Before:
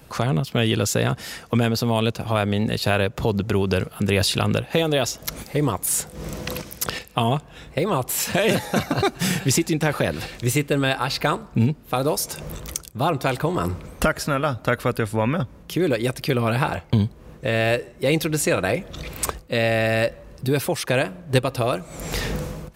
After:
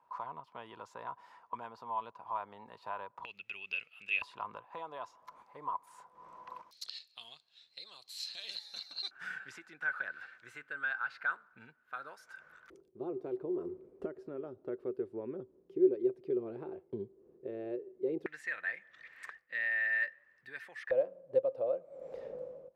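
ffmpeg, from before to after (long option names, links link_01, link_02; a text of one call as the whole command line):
ffmpeg -i in.wav -af "asetnsamples=nb_out_samples=441:pad=0,asendcmd='3.25 bandpass f 2600;4.22 bandpass f 1000;6.71 bandpass f 4200;9.11 bandpass f 1500;12.7 bandpass f 380;18.26 bandpass f 1800;20.91 bandpass f 540',bandpass=frequency=980:width_type=q:width=15:csg=0" out.wav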